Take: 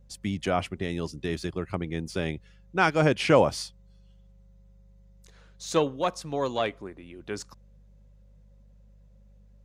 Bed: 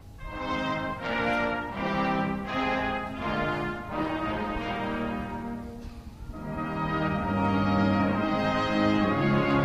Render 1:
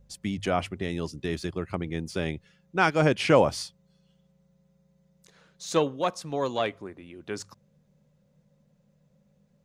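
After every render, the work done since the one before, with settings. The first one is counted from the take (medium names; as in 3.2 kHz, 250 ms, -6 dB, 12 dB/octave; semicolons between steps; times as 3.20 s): de-hum 50 Hz, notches 2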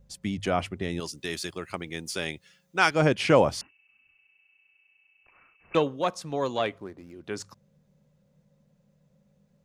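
1.00–2.91 s: tilt EQ +3 dB/octave; 3.61–5.75 s: frequency inversion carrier 2.8 kHz; 6.78–7.24 s: median filter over 15 samples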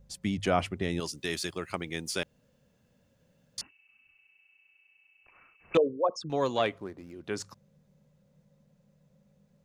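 2.23–3.58 s: room tone; 5.77–6.30 s: resonances exaggerated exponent 3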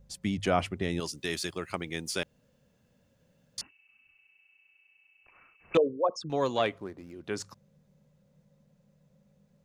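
no audible change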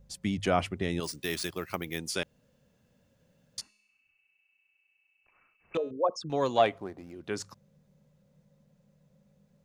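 1.03–1.99 s: careless resampling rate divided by 3×, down none, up hold; 3.60–5.91 s: feedback comb 210 Hz, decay 0.81 s; 6.57–7.15 s: peaking EQ 740 Hz +9 dB 0.44 oct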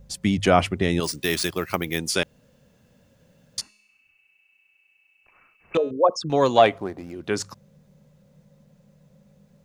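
trim +9 dB; peak limiter -3 dBFS, peak gain reduction 1.5 dB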